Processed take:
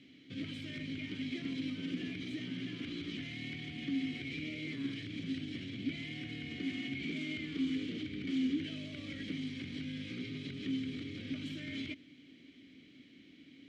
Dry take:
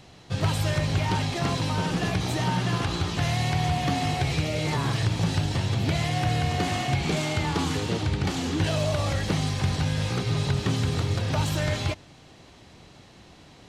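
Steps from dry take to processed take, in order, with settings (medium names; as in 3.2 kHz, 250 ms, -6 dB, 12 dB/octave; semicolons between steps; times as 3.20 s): peak limiter -23.5 dBFS, peak gain reduction 8.5 dB; vowel filter i; trim +5 dB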